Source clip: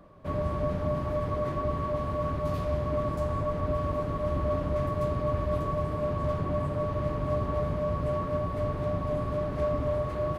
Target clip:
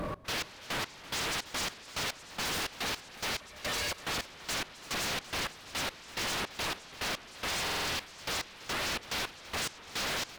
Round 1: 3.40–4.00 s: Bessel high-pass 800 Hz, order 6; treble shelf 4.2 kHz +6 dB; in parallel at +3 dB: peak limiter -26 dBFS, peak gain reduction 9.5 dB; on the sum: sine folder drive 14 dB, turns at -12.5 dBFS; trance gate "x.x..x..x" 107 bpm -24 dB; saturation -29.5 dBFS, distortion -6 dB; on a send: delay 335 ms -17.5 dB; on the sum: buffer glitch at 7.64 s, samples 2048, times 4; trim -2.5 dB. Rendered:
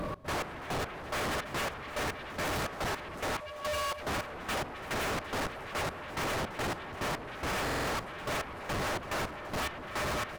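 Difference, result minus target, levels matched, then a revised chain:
sine folder: distortion -36 dB
3.40–4.00 s: Bessel high-pass 800 Hz, order 6; treble shelf 4.2 kHz +6 dB; in parallel at +3 dB: peak limiter -26 dBFS, peak gain reduction 9.5 dB; on the sum: sine folder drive 14 dB, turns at -21 dBFS; trance gate "x.x..x..x" 107 bpm -24 dB; saturation -29.5 dBFS, distortion -12 dB; on a send: delay 335 ms -17.5 dB; on the sum: buffer glitch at 7.64 s, samples 2048, times 4; trim -2.5 dB

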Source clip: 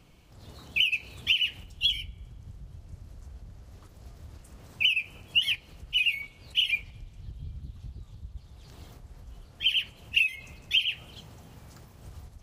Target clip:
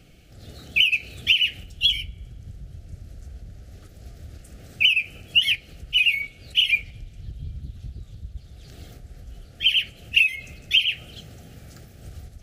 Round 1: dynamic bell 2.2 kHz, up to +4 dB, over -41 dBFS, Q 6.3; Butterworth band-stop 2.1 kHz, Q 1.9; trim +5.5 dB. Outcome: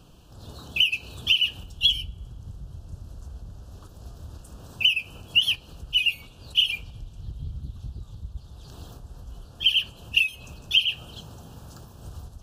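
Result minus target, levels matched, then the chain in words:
1 kHz band +7.5 dB
dynamic bell 2.2 kHz, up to +4 dB, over -41 dBFS, Q 6.3; Butterworth band-stop 990 Hz, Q 1.9; trim +5.5 dB

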